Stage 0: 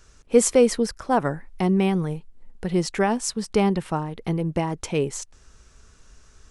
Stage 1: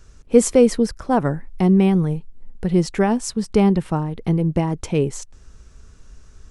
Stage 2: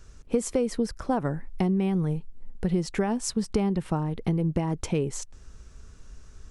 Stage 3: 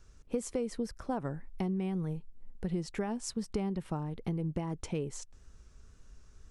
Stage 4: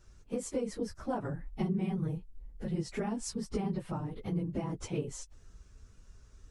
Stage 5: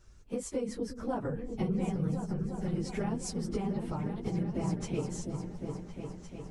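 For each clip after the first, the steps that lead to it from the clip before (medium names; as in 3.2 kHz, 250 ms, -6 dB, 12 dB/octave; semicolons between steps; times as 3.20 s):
bass shelf 400 Hz +9 dB; trim -1 dB
compression 12:1, threshold -19 dBFS, peak gain reduction 13 dB; trim -2 dB
wow and flutter 36 cents; trim -8.5 dB
phase randomisation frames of 50 ms
delay with an opening low-pass 353 ms, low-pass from 200 Hz, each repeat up 2 oct, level -3 dB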